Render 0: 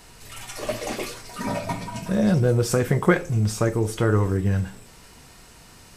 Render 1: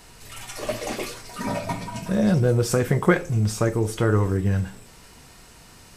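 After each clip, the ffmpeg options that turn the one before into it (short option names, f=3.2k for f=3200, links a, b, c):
-af anull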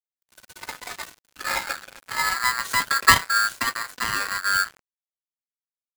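-af "aphaser=in_gain=1:out_gain=1:delay=4:decay=0.58:speed=0.63:type=sinusoidal,aeval=exprs='sgn(val(0))*max(abs(val(0))-0.0335,0)':c=same,aeval=exprs='val(0)*sgn(sin(2*PI*1500*n/s))':c=same,volume=-3dB"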